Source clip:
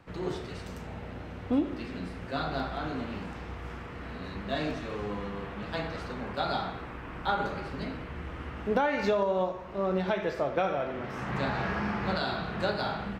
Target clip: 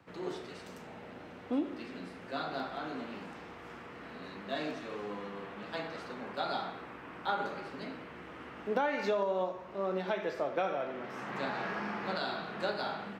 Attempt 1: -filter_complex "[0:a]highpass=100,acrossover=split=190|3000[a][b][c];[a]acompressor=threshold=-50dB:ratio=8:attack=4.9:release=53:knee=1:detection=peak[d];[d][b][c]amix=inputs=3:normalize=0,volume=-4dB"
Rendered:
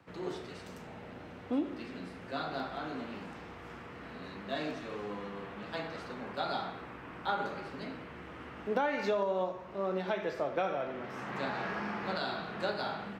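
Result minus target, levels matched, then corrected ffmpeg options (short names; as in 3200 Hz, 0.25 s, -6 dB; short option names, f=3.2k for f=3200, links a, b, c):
compressor: peak gain reduction -7 dB
-filter_complex "[0:a]highpass=100,acrossover=split=190|3000[a][b][c];[a]acompressor=threshold=-58dB:ratio=8:attack=4.9:release=53:knee=1:detection=peak[d];[d][b][c]amix=inputs=3:normalize=0,volume=-4dB"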